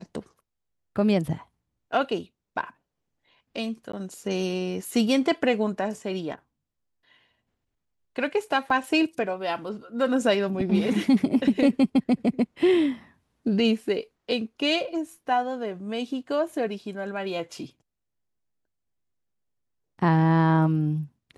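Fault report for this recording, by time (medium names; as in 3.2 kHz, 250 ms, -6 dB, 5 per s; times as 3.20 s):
3.92–3.93 s: dropout
8.70 s: dropout 2.8 ms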